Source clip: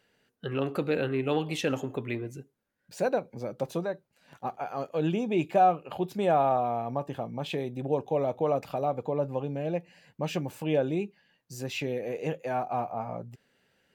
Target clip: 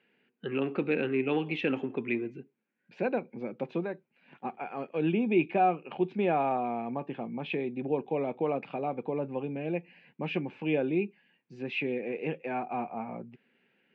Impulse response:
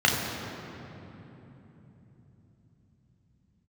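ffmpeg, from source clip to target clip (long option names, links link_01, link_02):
-af "highpass=frequency=150:width=0.5412,highpass=frequency=150:width=1.3066,equalizer=frequency=230:width_type=q:width=4:gain=6,equalizer=frequency=360:width_type=q:width=4:gain=5,equalizer=frequency=610:width_type=q:width=4:gain=-6,equalizer=frequency=1200:width_type=q:width=4:gain=-3,equalizer=frequency=2400:width_type=q:width=4:gain=9,lowpass=frequency=3100:width=0.5412,lowpass=frequency=3100:width=1.3066,volume=-2dB"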